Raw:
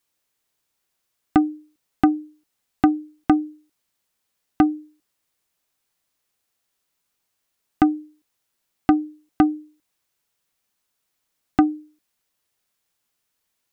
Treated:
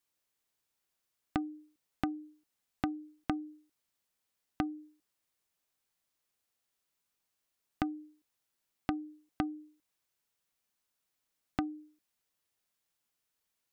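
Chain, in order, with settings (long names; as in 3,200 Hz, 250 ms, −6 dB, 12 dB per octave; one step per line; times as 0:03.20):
downward compressor 6 to 1, threshold −23 dBFS, peak gain reduction 11.5 dB
level −7.5 dB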